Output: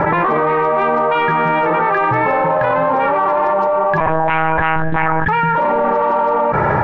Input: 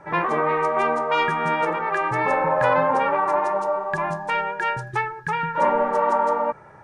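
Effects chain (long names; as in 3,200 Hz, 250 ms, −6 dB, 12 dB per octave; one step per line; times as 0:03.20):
in parallel at −6 dB: soft clipping −23 dBFS, distortion −9 dB
on the sum: high-frequency loss of the air 300 metres
0:04.00–0:05.28: one-pitch LPC vocoder at 8 kHz 160 Hz
boost into a limiter +17.5 dB
envelope flattener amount 100%
level −8.5 dB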